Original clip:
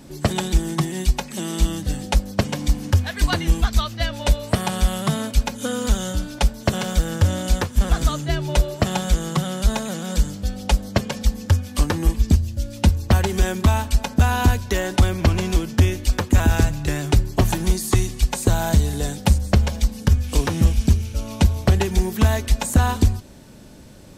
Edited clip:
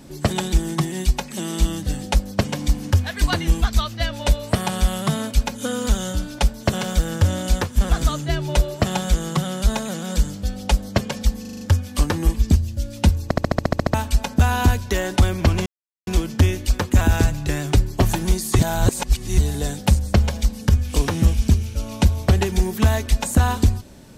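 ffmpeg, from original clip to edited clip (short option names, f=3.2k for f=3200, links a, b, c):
-filter_complex "[0:a]asplit=19[a][b][c][d][e][f][g][h][i][j][k][l][m][n][o][p][q][r][s];[a]atrim=end=11.452[t];[b]atrim=start=11.408:end=11.452[u];[c]atrim=start=11.408:end=11.452[v];[d]atrim=start=11.408:end=11.452[w];[e]atrim=start=11.408:end=11.452[x];[f]atrim=start=11.408:end=13.112[y];[g]atrim=start=13.038:end=13.112[z];[h]atrim=start=13.038:end=13.112[aa];[i]atrim=start=13.038:end=13.112[ab];[j]atrim=start=13.038:end=13.112[ac];[k]atrim=start=13.038:end=13.112[ad];[l]atrim=start=13.038:end=13.112[ae];[m]atrim=start=13.038:end=13.112[af];[n]atrim=start=13.038:end=13.112[ag];[o]atrim=start=13.038:end=13.112[ah];[p]atrim=start=13.738:end=15.46,asetpts=PTS-STARTPTS,afade=t=out:st=1.718:d=0.004:c=hsin,apad=pad_dur=0.41[ai];[q]atrim=start=15.46:end=17.982,asetpts=PTS-STARTPTS,afade=t=in:d=0.004:c=hsin[aj];[r]atrim=start=17.978:end=18.772,asetpts=PTS-STARTPTS,areverse[ak];[s]atrim=start=18.768[al];[t][u]acrossfade=d=0.004:c1=hsin:c2=hsin[am];[am][v]acrossfade=d=0.004:c1=hsin:c2=hsin[an];[an][w]acrossfade=d=0.004:c1=hsin:c2=hsin[ao];[ao][x]acrossfade=d=0.004:c1=hsin:c2=hsin[ap];[ap][y]acrossfade=d=0.004:c1=hsin:c2=hsin[aq];[aq][z]acrossfade=d=0.004:c1=hsin:c2=hsin[ar];[ar][aa]acrossfade=d=0.004:c1=hsin:c2=hsin[as];[as][ab]acrossfade=d=0.004:c1=hsin:c2=hsin[at];[at][ac]acrossfade=d=0.004:c1=hsin:c2=hsin[au];[au][ad]acrossfade=d=0.004:c1=hsin:c2=hsin[av];[av][ae]acrossfade=d=0.004:c1=hsin:c2=hsin[aw];[aw][af]acrossfade=d=0.004:c1=hsin:c2=hsin[ax];[ax][ag]acrossfade=d=0.004:c1=hsin:c2=hsin[ay];[ay][ah]acrossfade=d=0.004:c1=hsin:c2=hsin[az];[ai][aj]concat=n=2:v=0:a=1[ba];[az][ba]acrossfade=d=0.004:c1=hsin:c2=hsin[bb];[bb][ak]acrossfade=d=0.004:c1=hsin:c2=hsin[bc];[bc][al]acrossfade=d=0.004:c1=hsin:c2=hsin"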